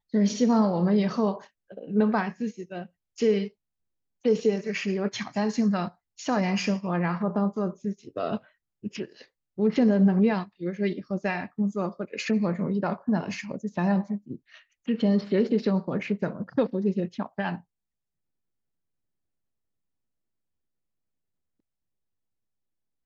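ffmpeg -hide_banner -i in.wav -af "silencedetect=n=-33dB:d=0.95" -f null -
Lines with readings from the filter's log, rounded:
silence_start: 17.56
silence_end: 23.06 | silence_duration: 5.50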